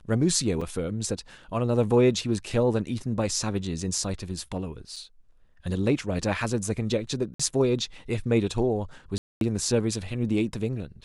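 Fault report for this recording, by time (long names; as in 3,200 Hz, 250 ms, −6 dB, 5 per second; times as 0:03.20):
0:00.61: drop-out 4.4 ms
0:04.96: drop-out 4.8 ms
0:07.34–0:07.39: drop-out 55 ms
0:09.18–0:09.41: drop-out 232 ms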